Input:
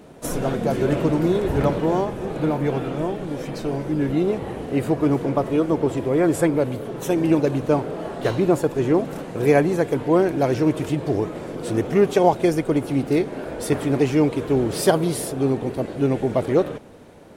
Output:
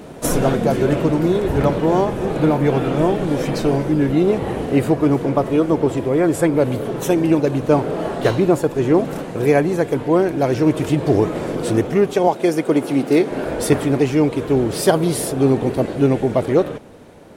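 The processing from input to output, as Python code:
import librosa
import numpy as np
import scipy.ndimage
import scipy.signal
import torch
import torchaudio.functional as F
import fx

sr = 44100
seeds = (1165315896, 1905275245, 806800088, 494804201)

y = fx.highpass(x, sr, hz=200.0, slope=12, at=(12.27, 13.31))
y = fx.rider(y, sr, range_db=5, speed_s=0.5)
y = F.gain(torch.from_numpy(y), 4.0).numpy()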